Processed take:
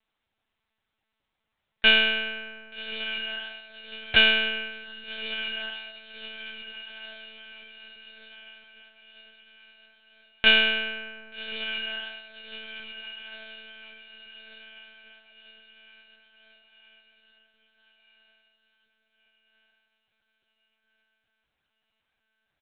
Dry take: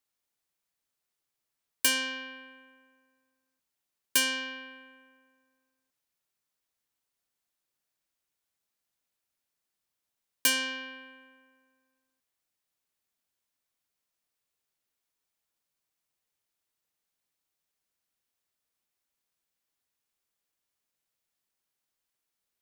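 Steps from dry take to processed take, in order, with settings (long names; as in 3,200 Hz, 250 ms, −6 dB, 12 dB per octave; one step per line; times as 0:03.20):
comb filter 6.3 ms, depth 78%
feedback delay with all-pass diffusion 1,194 ms, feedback 51%, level −11 dB
one-pitch LPC vocoder at 8 kHz 220 Hz
level +8 dB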